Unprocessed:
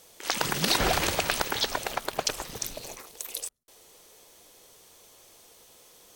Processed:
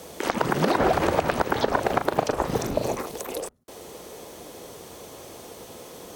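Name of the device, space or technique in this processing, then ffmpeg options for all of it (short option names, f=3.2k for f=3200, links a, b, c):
mastering chain: -filter_complex "[0:a]highpass=59,equalizer=f=250:t=o:w=0.77:g=2.5,acrossover=split=330|1800[a][b][c];[a]acompressor=threshold=-47dB:ratio=4[d];[b]acompressor=threshold=-32dB:ratio=4[e];[c]acompressor=threshold=-44dB:ratio=4[f];[d][e][f]amix=inputs=3:normalize=0,acompressor=threshold=-37dB:ratio=2,tiltshelf=f=1.4k:g=6.5,alimiter=level_in=18.5dB:limit=-1dB:release=50:level=0:latency=1,asettb=1/sr,asplit=3[g][h][i];[g]atrim=end=1.644[j];[h]atrim=start=1.64:end=2.9,asetpts=PTS-STARTPTS,afade=t=in:d=0.004:c=qsin,afade=t=out:st=1.256:d=0.004:c=qsin,asplit=2[k][l];[l]adelay=39,volume=-8.5dB[m];[k][m]amix=inputs=2:normalize=0,atrim=end_sample=55566[n];[i]atrim=start=2.896[o];[j][n]acrossfade=d=0.004:c1=hsin:c2=qsin[p];[p][o]acrossfade=d=0.004:c1=qsin:c2=hsin,volume=-5dB"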